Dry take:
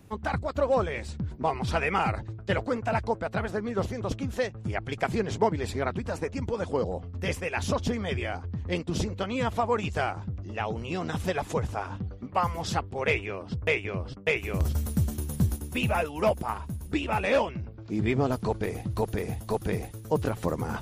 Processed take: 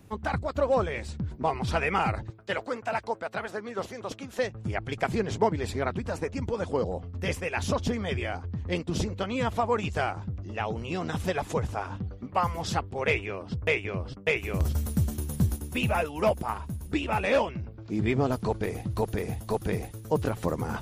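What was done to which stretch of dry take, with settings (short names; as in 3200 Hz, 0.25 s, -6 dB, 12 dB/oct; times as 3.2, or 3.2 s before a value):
2.3–4.39 HPF 550 Hz 6 dB/oct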